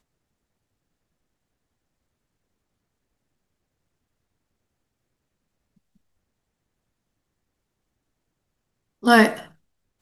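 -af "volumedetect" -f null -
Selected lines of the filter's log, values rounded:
mean_volume: -30.1 dB
max_volume: -2.5 dB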